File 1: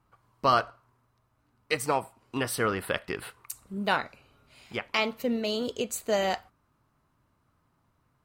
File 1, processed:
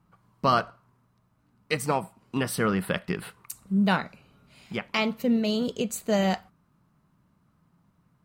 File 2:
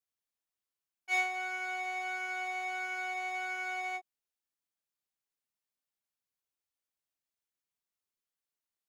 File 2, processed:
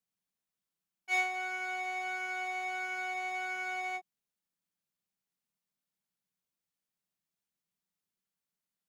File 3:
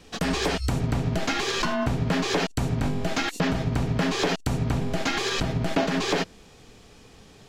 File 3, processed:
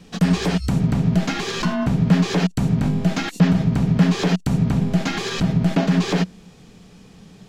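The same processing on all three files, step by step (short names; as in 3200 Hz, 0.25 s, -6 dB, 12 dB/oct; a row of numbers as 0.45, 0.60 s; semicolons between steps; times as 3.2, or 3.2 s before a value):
bell 180 Hz +15 dB 0.62 oct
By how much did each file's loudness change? +2.5, 0.0, +6.0 LU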